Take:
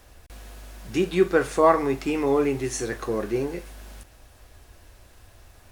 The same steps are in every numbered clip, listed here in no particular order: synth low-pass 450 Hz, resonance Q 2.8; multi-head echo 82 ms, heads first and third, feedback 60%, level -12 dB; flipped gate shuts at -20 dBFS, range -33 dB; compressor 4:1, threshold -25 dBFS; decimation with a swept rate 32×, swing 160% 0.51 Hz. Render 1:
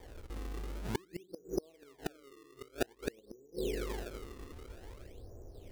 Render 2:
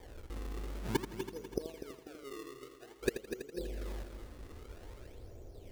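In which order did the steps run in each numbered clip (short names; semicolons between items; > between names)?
synth low-pass > compressor > multi-head echo > flipped gate > decimation with a swept rate; flipped gate > synth low-pass > decimation with a swept rate > multi-head echo > compressor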